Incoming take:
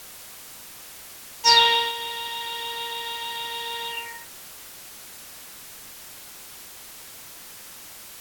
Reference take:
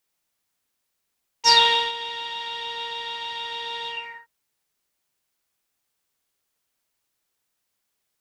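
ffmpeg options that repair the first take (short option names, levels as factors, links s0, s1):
-af "afwtdn=0.0079,asetnsamples=n=441:p=0,asendcmd='4.21 volume volume -4.5dB',volume=1"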